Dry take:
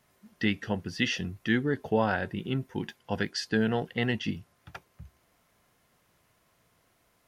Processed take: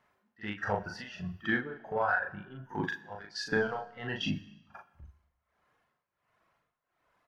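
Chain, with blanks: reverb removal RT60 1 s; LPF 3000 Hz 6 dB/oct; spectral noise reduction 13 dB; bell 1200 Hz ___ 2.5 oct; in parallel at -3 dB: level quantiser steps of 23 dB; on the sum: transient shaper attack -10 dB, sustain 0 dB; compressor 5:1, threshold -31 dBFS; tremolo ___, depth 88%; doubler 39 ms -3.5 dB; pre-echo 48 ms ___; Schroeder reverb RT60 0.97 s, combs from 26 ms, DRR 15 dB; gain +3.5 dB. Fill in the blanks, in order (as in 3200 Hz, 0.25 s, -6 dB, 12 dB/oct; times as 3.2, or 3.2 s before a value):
+11 dB, 1.4 Hz, -18 dB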